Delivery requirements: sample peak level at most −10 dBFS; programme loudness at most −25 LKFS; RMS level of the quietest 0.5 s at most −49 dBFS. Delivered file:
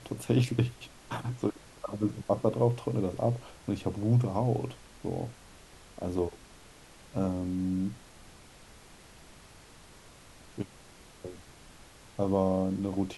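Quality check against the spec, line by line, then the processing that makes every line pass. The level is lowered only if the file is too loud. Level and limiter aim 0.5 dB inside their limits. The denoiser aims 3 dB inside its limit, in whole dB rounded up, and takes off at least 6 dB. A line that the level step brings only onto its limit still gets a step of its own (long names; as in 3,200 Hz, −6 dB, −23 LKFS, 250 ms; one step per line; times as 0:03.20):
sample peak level −12.0 dBFS: in spec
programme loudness −31.5 LKFS: in spec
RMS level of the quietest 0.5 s −53 dBFS: in spec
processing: no processing needed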